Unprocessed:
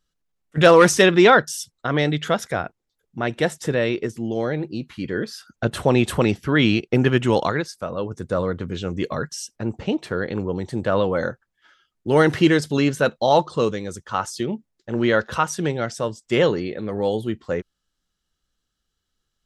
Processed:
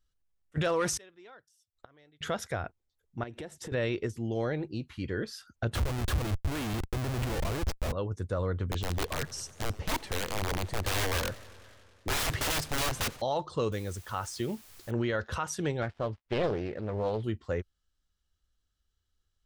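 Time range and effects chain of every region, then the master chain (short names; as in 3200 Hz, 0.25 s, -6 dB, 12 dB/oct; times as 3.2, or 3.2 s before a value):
0.97–2.21 bell 170 Hz -5.5 dB 0.82 oct + flipped gate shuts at -23 dBFS, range -32 dB
3.23–3.72 bell 310 Hz +7 dB 1.6 oct + compressor, threshold -31 dBFS
5.75–7.92 compressor 20:1, threshold -18 dBFS + Schmitt trigger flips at -30.5 dBFS
8.65–13.22 notch 1400 Hz, Q 15 + wrapped overs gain 18.5 dB + warbling echo 92 ms, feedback 78%, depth 199 cents, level -21 dB
13.72–14.91 upward compressor, threshold -31 dBFS + requantised 8-bit, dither triangular
15.82–17.24 switching dead time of 0.087 ms + LPF 2900 Hz + Doppler distortion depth 0.51 ms
whole clip: resonant low shelf 120 Hz +8 dB, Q 1.5; limiter -14 dBFS; gain -7 dB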